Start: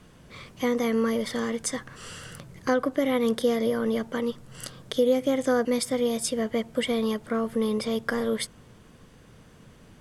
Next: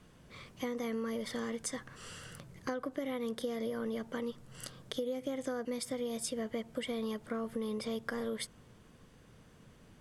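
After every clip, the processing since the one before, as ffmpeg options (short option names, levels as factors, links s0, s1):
-af "acompressor=threshold=0.0501:ratio=6,volume=0.447"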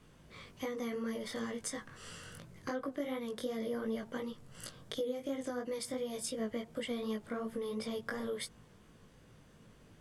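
-af "flanger=delay=18:depth=3:speed=2.8,volume=1.26"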